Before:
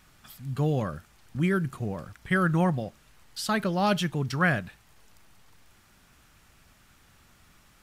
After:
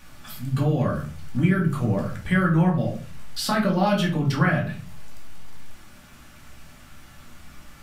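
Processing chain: dynamic bell 7.8 kHz, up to -5 dB, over -51 dBFS, Q 0.81; compression 4:1, threshold -30 dBFS, peak gain reduction 10 dB; simulated room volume 290 m³, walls furnished, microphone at 2.4 m; trim +5.5 dB

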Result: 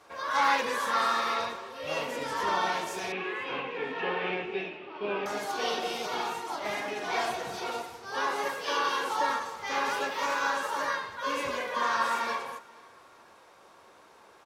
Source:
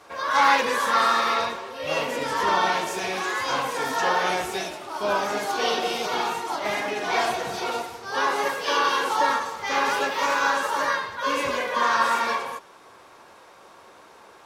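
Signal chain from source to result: 3.12–5.26 s: cabinet simulation 140–3000 Hz, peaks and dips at 180 Hz +5 dB, 410 Hz +8 dB, 650 Hz -8 dB, 950 Hz -6 dB, 1.4 kHz -7 dB, 2.6 kHz +9 dB; feedback delay 482 ms, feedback 34%, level -24 dB; trim -6.5 dB

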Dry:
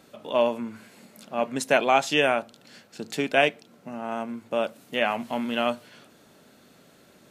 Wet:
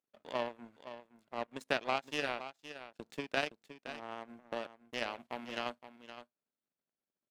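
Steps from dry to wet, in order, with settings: compression 2:1, threshold -37 dBFS, peak gain reduction 12.5 dB; treble shelf 4 kHz -7 dB; expander -43 dBFS; upward compressor, threshold -49 dBFS; power-law waveshaper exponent 2; bass shelf 150 Hz -5.5 dB; on a send: delay 517 ms -12 dB; on the sum: trim +5 dB

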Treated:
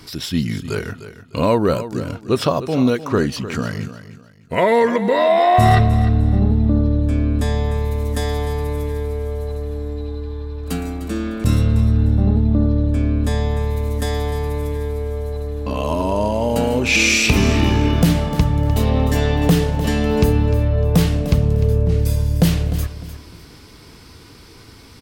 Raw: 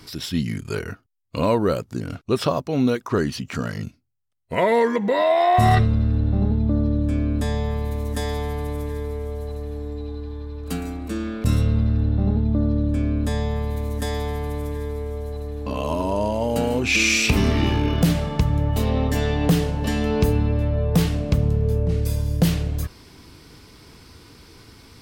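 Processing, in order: feedback delay 302 ms, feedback 29%, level -13 dB; trim +3.5 dB

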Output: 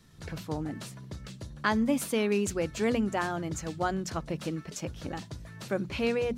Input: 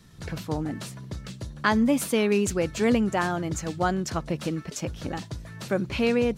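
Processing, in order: hum notches 60/120/180/240 Hz; trim -4.5 dB

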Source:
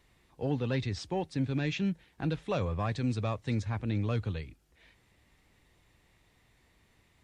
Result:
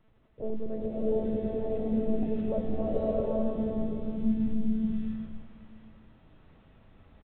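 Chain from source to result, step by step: local Wiener filter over 41 samples; low-pass sweep 550 Hz -> 190 Hz, 2.74–4.46 s; crackle 170 per s -43 dBFS; level-controlled noise filter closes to 370 Hz, open at -23.5 dBFS; in parallel at -1 dB: compressor with a negative ratio -35 dBFS, ratio -1; on the sum: bit crusher 10-bit; monotone LPC vocoder at 8 kHz 220 Hz; feedback comb 650 Hz, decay 0.23 s, harmonics all, mix 60%; on a send: delay 659 ms -18.5 dB; on the sum: swelling reverb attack 710 ms, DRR -8 dB

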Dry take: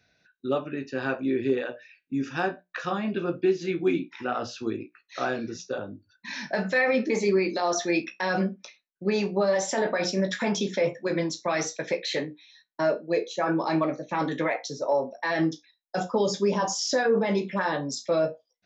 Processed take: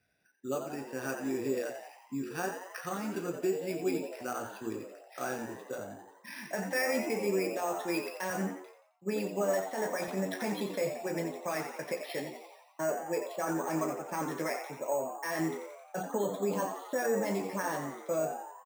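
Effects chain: careless resampling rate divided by 6×, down filtered, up hold; frequency-shifting echo 88 ms, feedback 59%, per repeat +89 Hz, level -8.5 dB; 8.30–10.08 s: three bands expanded up and down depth 70%; trim -8 dB

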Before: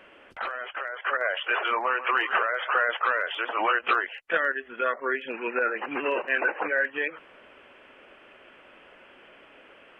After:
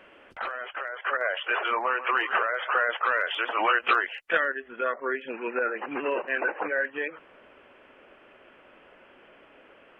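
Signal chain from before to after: treble shelf 2.1 kHz -2.5 dB, from 3.12 s +3.5 dB, from 4.44 s -7.5 dB

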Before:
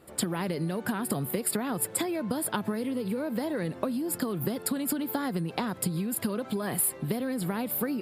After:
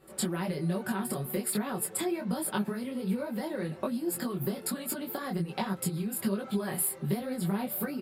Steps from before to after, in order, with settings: comb 5.3 ms, depth 58%; detune thickener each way 43 cents

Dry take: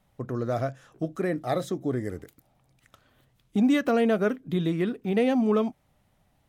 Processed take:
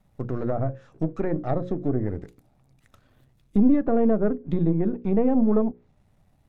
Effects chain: partial rectifier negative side -7 dB; hum notches 60/120/180/240/300/360/420/480/540 Hz; low-pass that closes with the level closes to 1 kHz, closed at -25 dBFS; bass shelf 400 Hz +9.5 dB; band-stop 3.1 kHz, Q 16

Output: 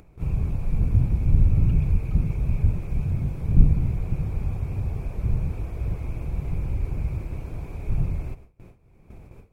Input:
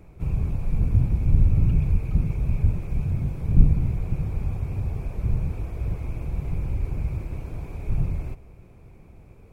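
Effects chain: gate with hold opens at -37 dBFS; upward compressor, threshold -37 dBFS

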